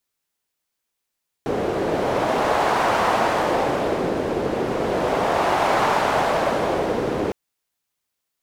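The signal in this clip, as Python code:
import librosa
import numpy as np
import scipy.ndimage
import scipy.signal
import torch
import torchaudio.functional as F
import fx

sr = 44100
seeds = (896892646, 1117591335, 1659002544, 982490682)

y = fx.wind(sr, seeds[0], length_s=5.86, low_hz=410.0, high_hz=840.0, q=1.5, gusts=2, swing_db=4.0)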